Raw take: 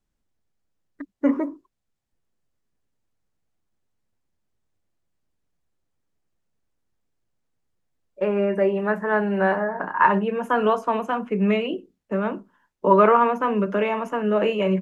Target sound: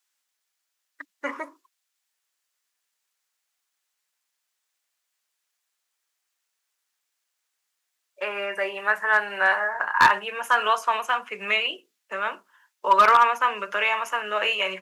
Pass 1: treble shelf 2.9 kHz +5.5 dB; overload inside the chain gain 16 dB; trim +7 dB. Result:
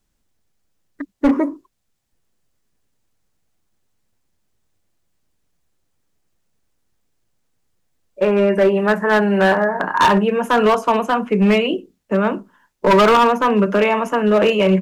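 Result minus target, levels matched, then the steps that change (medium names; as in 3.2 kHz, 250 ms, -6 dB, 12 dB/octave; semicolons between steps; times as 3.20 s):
1 kHz band -2.5 dB
add first: high-pass 1.3 kHz 12 dB/octave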